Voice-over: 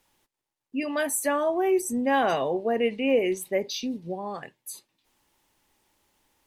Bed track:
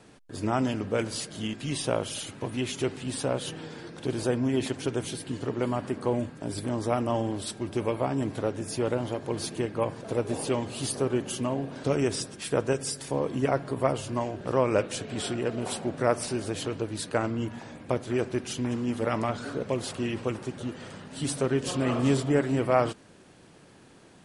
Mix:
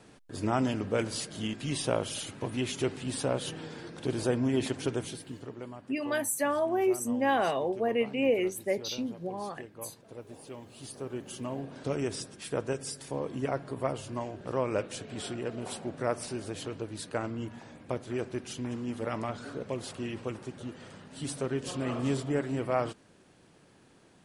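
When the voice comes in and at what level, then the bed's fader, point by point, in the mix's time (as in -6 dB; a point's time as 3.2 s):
5.15 s, -3.5 dB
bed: 4.9 s -1.5 dB
5.82 s -17 dB
10.5 s -17 dB
11.61 s -6 dB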